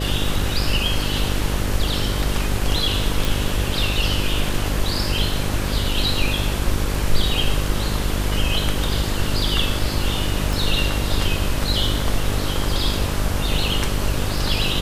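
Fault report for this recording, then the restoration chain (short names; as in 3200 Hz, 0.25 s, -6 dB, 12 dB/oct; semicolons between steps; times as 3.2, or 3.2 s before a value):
buzz 50 Hz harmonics 12 -25 dBFS
3.25 pop
10.53 pop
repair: de-click; de-hum 50 Hz, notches 12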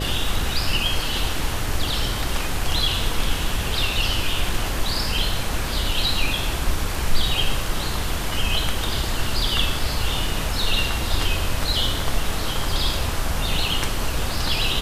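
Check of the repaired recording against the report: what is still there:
10.53 pop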